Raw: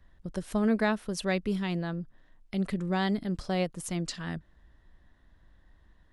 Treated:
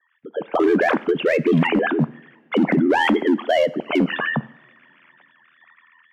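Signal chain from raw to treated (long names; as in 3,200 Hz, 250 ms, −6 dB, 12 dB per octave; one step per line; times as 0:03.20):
three sine waves on the formant tracks
elliptic high-pass filter 190 Hz, stop band 60 dB
automatic gain control gain up to 14 dB
brickwall limiter −14 dBFS, peak gain reduction 10 dB
hard clipping −16 dBFS, distortion −23 dB
ring modulation 41 Hz
coupled-rooms reverb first 0.67 s, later 3.3 s, from −22 dB, DRR 16.5 dB
level +6 dB
Ogg Vorbis 96 kbit/s 48,000 Hz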